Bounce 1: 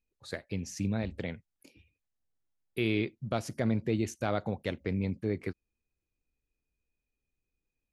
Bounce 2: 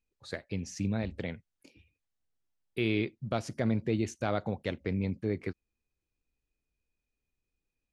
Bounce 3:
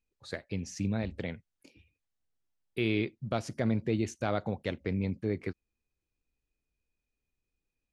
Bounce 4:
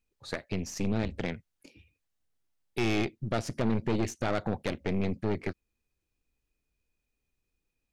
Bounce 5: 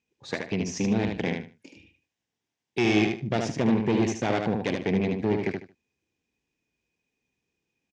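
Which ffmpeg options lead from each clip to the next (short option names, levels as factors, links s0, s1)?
-af "lowpass=8100"
-af anull
-af "aeval=exprs='(tanh(35.5*val(0)+0.75)-tanh(0.75))/35.5':c=same,volume=2.51"
-af "highpass=140,equalizer=f=590:t=q:w=4:g=-5,equalizer=f=1300:t=q:w=4:g=-10,equalizer=f=4300:t=q:w=4:g=-7,lowpass=f=6500:w=0.5412,lowpass=f=6500:w=1.3066,aecho=1:1:75|150|225:0.596|0.131|0.0288,volume=2"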